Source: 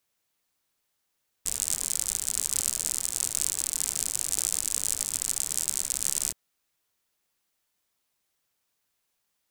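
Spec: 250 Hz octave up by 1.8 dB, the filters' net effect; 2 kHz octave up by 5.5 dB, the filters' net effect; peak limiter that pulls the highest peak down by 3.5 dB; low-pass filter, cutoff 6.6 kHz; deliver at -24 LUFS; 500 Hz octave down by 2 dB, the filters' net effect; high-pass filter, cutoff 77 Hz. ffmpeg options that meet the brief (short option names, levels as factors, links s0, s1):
-af "highpass=77,lowpass=6600,equalizer=f=250:t=o:g=3.5,equalizer=f=500:t=o:g=-4,equalizer=f=2000:t=o:g=7,volume=2.82,alimiter=limit=0.708:level=0:latency=1"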